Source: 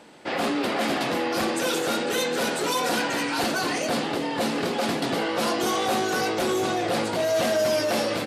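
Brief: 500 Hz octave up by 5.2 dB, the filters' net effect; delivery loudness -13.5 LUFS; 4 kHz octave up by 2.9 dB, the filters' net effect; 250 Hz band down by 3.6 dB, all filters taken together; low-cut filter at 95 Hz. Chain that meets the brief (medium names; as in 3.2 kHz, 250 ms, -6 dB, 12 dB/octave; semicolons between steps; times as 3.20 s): high-pass 95 Hz; peaking EQ 250 Hz -9 dB; peaking EQ 500 Hz +8.5 dB; peaking EQ 4 kHz +3.5 dB; trim +8.5 dB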